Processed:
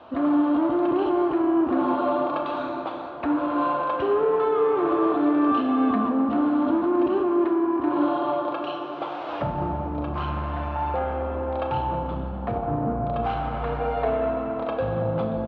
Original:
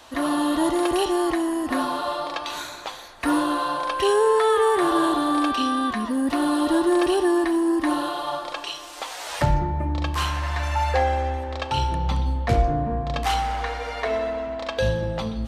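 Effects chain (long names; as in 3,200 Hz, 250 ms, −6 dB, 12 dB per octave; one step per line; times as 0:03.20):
tilt shelving filter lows +6.5 dB, about 940 Hz
brickwall limiter −15 dBFS, peak gain reduction 11.5 dB
soft clipping −19.5 dBFS, distortion −16 dB
loudspeaker in its box 110–3,100 Hz, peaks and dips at 660 Hz +4 dB, 1,300 Hz +5 dB, 1,900 Hz −9 dB
double-tracking delay 34 ms −13 dB
convolution reverb RT60 5.1 s, pre-delay 21 ms, DRR 4.5 dB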